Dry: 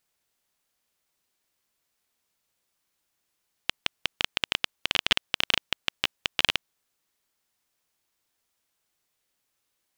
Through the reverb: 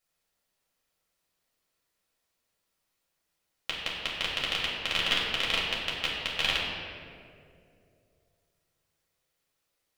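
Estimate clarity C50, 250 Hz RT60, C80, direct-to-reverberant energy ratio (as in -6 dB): 0.5 dB, 2.9 s, 2.0 dB, -6.0 dB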